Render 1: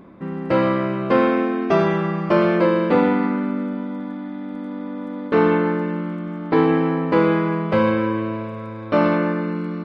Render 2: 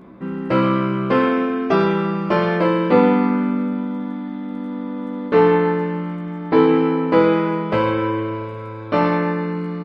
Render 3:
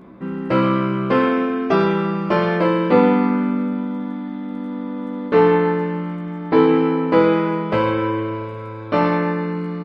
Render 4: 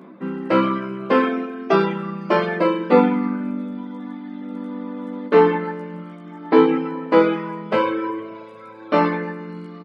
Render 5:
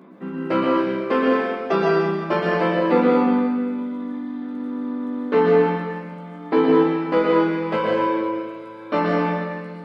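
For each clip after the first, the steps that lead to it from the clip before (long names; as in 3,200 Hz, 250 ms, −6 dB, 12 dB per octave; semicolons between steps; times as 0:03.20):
double-tracking delay 16 ms −3.5 dB
no processing that can be heard
reverb reduction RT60 1.4 s; high-pass filter 180 Hz 24 dB per octave; level +1.5 dB
in parallel at −9 dB: soft clipping −12.5 dBFS, distortion −11 dB; on the sum: dense smooth reverb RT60 1.5 s, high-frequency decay 1×, pre-delay 105 ms, DRR −2 dB; level −6.5 dB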